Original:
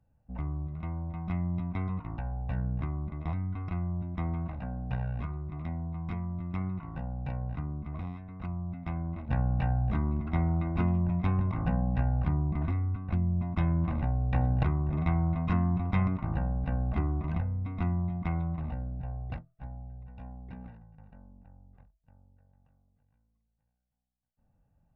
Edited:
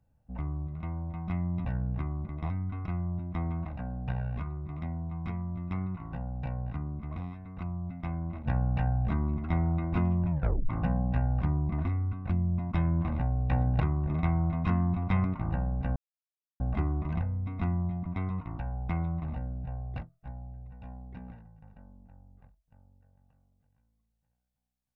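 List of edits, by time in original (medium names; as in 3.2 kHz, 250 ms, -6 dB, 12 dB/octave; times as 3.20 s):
1.65–2.48 s: move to 18.25 s
11.14 s: tape stop 0.38 s
16.79 s: insert silence 0.64 s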